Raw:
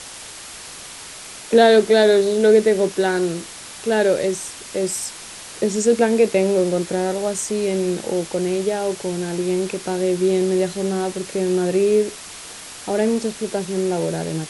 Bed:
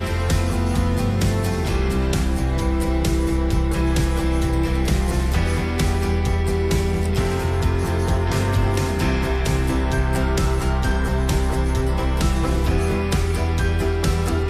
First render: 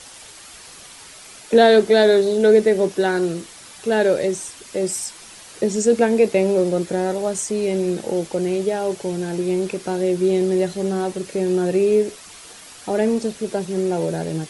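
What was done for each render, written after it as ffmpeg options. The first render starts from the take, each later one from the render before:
-af "afftdn=nr=7:nf=-37"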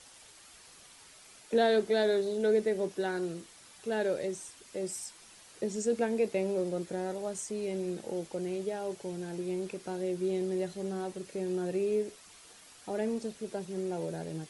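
-af "volume=-13.5dB"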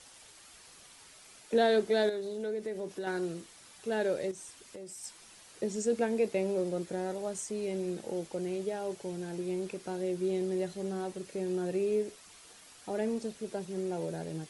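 -filter_complex "[0:a]asettb=1/sr,asplit=3[a][b][c];[a]atrim=end=2.094[d];[b]atrim=start=2.09:end=3.07,asetpts=PTS-STARTPTS,afade=t=in:d=0.004:c=qsin,afade=t=out:st=0.976:d=0.004:c=qsin,acompressor=threshold=-36dB:ratio=2.5:attack=3.2:release=140:knee=1:detection=peak[e];[c]atrim=start=3.066[f];[d][e]acrossfade=d=0.004:c1=hsin:c2=qsin[g];[g][f]acrossfade=d=0.004:c1=qsin:c2=hsin,asettb=1/sr,asplit=3[h][i][j];[h]atrim=end=4.314[k];[i]atrim=start=4.31:end=5.04,asetpts=PTS-STARTPTS,afade=t=in:d=0.004:c=qsin,afade=t=out:st=0.726:d=0.004:c=qsin,acompressor=threshold=-42dB:ratio=6:attack=3.2:release=140:knee=1:detection=peak[l];[j]atrim=start=5.036[m];[k][l]acrossfade=d=0.004:c1=hsin:c2=qsin[n];[n][m]acrossfade=d=0.004:c1=qsin:c2=hsin"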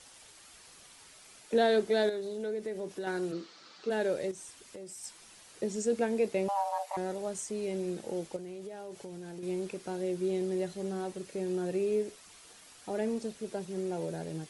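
-filter_complex "[0:a]asplit=3[a][b][c];[a]afade=t=out:st=3.31:d=0.02[d];[b]highpass=f=150:w=0.5412,highpass=f=150:w=1.3066,equalizer=f=330:t=q:w=4:g=6,equalizer=f=490:t=q:w=4:g=4,equalizer=f=1.3k:t=q:w=4:g=8,equalizer=f=4.4k:t=q:w=4:g=8,lowpass=f=5.8k:w=0.5412,lowpass=f=5.8k:w=1.3066,afade=t=in:st=3.31:d=0.02,afade=t=out:st=3.89:d=0.02[e];[c]afade=t=in:st=3.89:d=0.02[f];[d][e][f]amix=inputs=3:normalize=0,asettb=1/sr,asplit=3[g][h][i];[g]atrim=end=6.484[j];[h]atrim=start=6.48:end=6.97,asetpts=PTS-STARTPTS,afade=t=in:d=0.004:c=qsin,afade=t=out:st=0.486:d=0.004:c=qsin,afreqshift=400[k];[i]atrim=start=6.966[l];[j][k]acrossfade=d=0.004:c1=hsin:c2=qsin[m];[m][l]acrossfade=d=0.004:c1=qsin:c2=hsin,asettb=1/sr,asplit=3[n][o][p];[n]atrim=end=8.364[q];[o]atrim=start=8.36:end=9.43,asetpts=PTS-STARTPTS,afade=t=in:d=0.004:c=qsin,afade=t=out:st=1.066:d=0.004:c=qsin,acompressor=threshold=-39dB:ratio=6:attack=3.2:release=140:knee=1:detection=peak[r];[p]atrim=start=9.426[s];[q][r]acrossfade=d=0.004:c1=hsin:c2=qsin[t];[t][s]acrossfade=d=0.004:c1=qsin:c2=hsin"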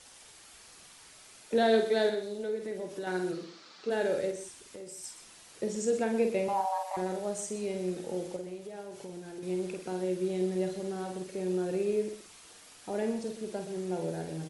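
-filter_complex "[0:a]asplit=2[a][b];[b]adelay=49,volume=-6.5dB[c];[a][c]amix=inputs=2:normalize=0,asplit=2[d][e];[e]aecho=0:1:124:0.266[f];[d][f]amix=inputs=2:normalize=0"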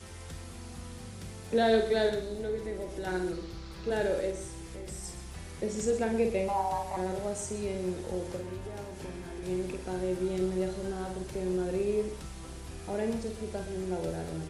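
-filter_complex "[1:a]volume=-24dB[a];[0:a][a]amix=inputs=2:normalize=0"

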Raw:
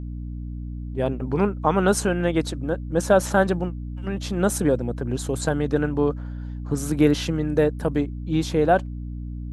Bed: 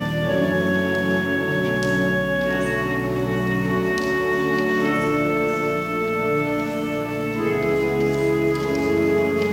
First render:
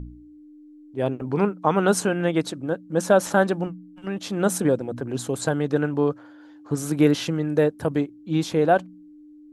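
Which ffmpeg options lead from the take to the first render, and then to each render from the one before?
-af "bandreject=f=60:t=h:w=4,bandreject=f=120:t=h:w=4,bandreject=f=180:t=h:w=4,bandreject=f=240:t=h:w=4"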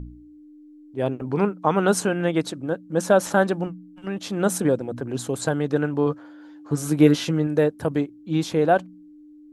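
-filter_complex "[0:a]asettb=1/sr,asplit=3[a][b][c];[a]atrim=end=6.054[d];[b]atrim=start=6.05:end=7.47,asetpts=PTS-STARTPTS,afade=t=in:d=0.004:c=qsin,afade=t=out:st=1.416:d=0.004:c=qsin,asplit=2[e][f];[f]adelay=13,volume=-6.5dB[g];[e][g]amix=inputs=2:normalize=0,atrim=end_sample=62622[h];[c]atrim=start=7.466[i];[d][h]acrossfade=d=0.004:c1=hsin:c2=qsin[j];[j][i]acrossfade=d=0.004:c1=qsin:c2=hsin"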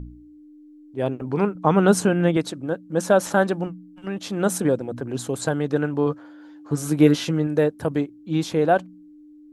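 -filter_complex "[0:a]asettb=1/sr,asplit=3[a][b][c];[a]atrim=end=1.554[d];[b]atrim=start=1.55:end=2.37,asetpts=PTS-STARTPTS,afade=t=in:d=0.004:c=qsin,afade=t=out:st=0.816:d=0.004:c=qsin,lowshelf=f=270:g=8.5[e];[c]atrim=start=2.366[f];[d][e]acrossfade=d=0.004:c1=hsin:c2=qsin[g];[g][f]acrossfade=d=0.004:c1=qsin:c2=hsin"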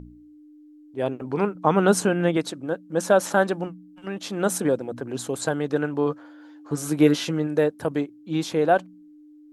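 -af "lowshelf=f=150:g=-10"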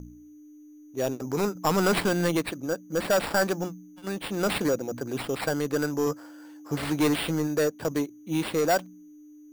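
-filter_complex "[0:a]acrossover=split=1300[a][b];[a]asoftclip=type=tanh:threshold=-19dB[c];[c][b]amix=inputs=2:normalize=0,acrusher=samples=7:mix=1:aa=0.000001"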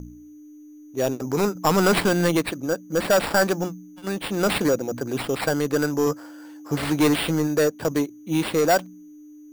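-af "volume=4.5dB"

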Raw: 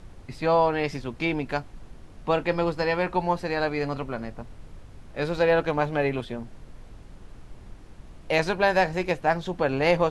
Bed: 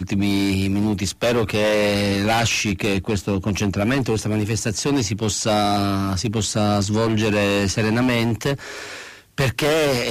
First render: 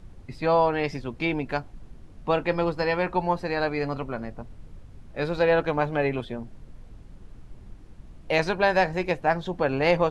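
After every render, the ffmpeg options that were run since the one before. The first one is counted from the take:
-af "afftdn=nr=6:nf=-46"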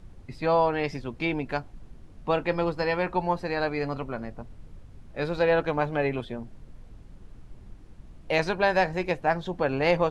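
-af "volume=-1.5dB"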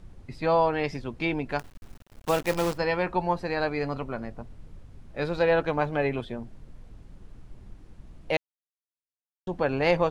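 -filter_complex "[0:a]asettb=1/sr,asplit=3[a][b][c];[a]atrim=end=1.594[d];[b]atrim=start=1.59:end=2.78,asetpts=PTS-STARTPTS,afade=t=in:d=0.004:c=qsin,afade=t=out:st=1.186:d=0.004:c=qsin,acrusher=bits=6:dc=4:mix=0:aa=0.000001[e];[c]atrim=start=2.776[f];[d][e]acrossfade=d=0.004:c1=hsin:c2=qsin[g];[g][f]acrossfade=d=0.004:c1=qsin:c2=hsin,asplit=3[h][i][j];[h]atrim=end=8.37,asetpts=PTS-STARTPTS,afade=t=out:st=8.366:d=0.004:c=hsin[k];[i]atrim=start=8.37:end=9.47,asetpts=PTS-STARTPTS,volume=0[l];[j]atrim=start=9.47,asetpts=PTS-STARTPTS,afade=t=in:d=0.004:c=hsin[m];[k][l][m]concat=n=3:v=0:a=1"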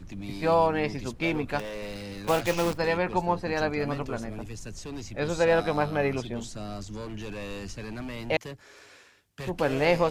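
-filter_complex "[1:a]volume=-18.5dB[a];[0:a][a]amix=inputs=2:normalize=0"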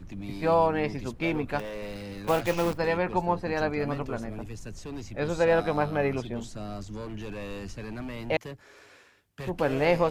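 -af "equalizer=f=6.2k:w=0.49:g=-5"

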